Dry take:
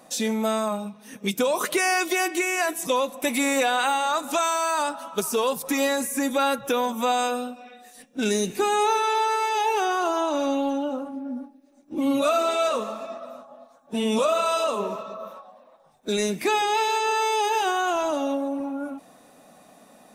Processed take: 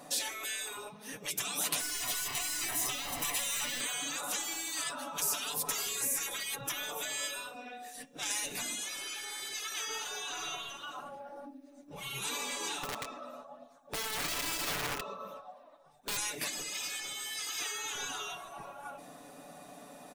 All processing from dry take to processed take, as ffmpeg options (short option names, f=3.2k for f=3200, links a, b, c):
-filter_complex "[0:a]asettb=1/sr,asplit=3[a][b][c];[a]atrim=end=1.804[d];[b]atrim=start=1.8:end=3.81,asetpts=PTS-STARTPTS,afade=t=in:d=0.004:c=qsin,afade=t=out:st=2.006:d=0.004:c=qsin,aeval=exprs='val(0)+0.5*0.0422*sgn(val(0))':c=same,flanger=delay=5.5:depth=2.9:regen=74:speed=1.5:shape=triangular,aecho=1:1:1:0.56,atrim=end_sample=88641[e];[c]atrim=start=3.806[f];[d][e]acrossfade=d=0.004:c1=hsin:c2=qsin[g];[g][f]acrossfade=d=0.004:c1=qsin:c2=hsin,asettb=1/sr,asplit=3[h][i][j];[h]atrim=end=12.834[k];[i]atrim=start=12.83:end=16.17,asetpts=PTS-STARTPTS,afade=t=in:d=0.004:c=qsin,afade=t=out:st=3.336:d=0.004:c=qsin,acompressor=threshold=-25dB:ratio=5:attack=3.2:release=140:knee=1:detection=peak,flanger=delay=0.3:depth=3:regen=47:speed=1.2:shape=sinusoidal,aeval=exprs='(mod(29.9*val(0)+1,2)-1)/29.9':c=same[l];[j]atrim=start=16.166[m];[k][l]acrossfade=d=0.004:c1=hsin:c2=qsin[n];[n][m]acrossfade=d=0.004:c1=qsin:c2=hsin,afftfilt=real='re*lt(hypot(re,im),0.0631)':imag='im*lt(hypot(re,im),0.0631)':win_size=1024:overlap=0.75,aecho=1:1:6.9:0.54"